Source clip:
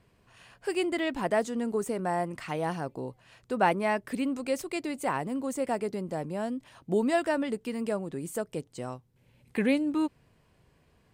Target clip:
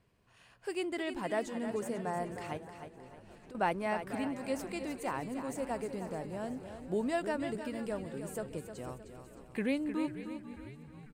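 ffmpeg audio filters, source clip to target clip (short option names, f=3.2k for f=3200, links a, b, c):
-filter_complex "[0:a]asplit=2[a][b];[b]asplit=6[c][d][e][f][g][h];[c]adelay=493,afreqshift=-73,volume=-14.5dB[i];[d]adelay=986,afreqshift=-146,volume=-18.8dB[j];[e]adelay=1479,afreqshift=-219,volume=-23.1dB[k];[f]adelay=1972,afreqshift=-292,volume=-27.4dB[l];[g]adelay=2465,afreqshift=-365,volume=-31.7dB[m];[h]adelay=2958,afreqshift=-438,volume=-36dB[n];[i][j][k][l][m][n]amix=inputs=6:normalize=0[o];[a][o]amix=inputs=2:normalize=0,asettb=1/sr,asplit=3[p][q][r];[p]atrim=end=2.574[s];[q]atrim=start=2.57:end=3.55,asetpts=PTS-STARTPTS,afade=t=in:d=0.004:c=qsin,afade=t=out:st=0.976:d=0.004:c=qsin,acompressor=threshold=-43dB:ratio=10[t];[r]atrim=start=3.546[u];[s][t]acrossfade=d=0.004:c1=hsin:c2=qsin[v];[v][u]acrossfade=d=0.004:c1=qsin:c2=hsin,asplit=2[w][x];[x]aecho=0:1:309|618|927|1236|1545:0.335|0.144|0.0619|0.0266|0.0115[y];[w][y]amix=inputs=2:normalize=0,volume=-7dB"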